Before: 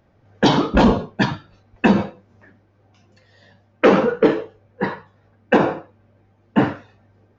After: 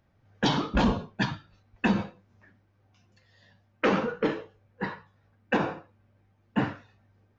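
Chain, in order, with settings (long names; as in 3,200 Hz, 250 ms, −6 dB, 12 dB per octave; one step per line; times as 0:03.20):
parametric band 450 Hz −6.5 dB 2 octaves
level −6.5 dB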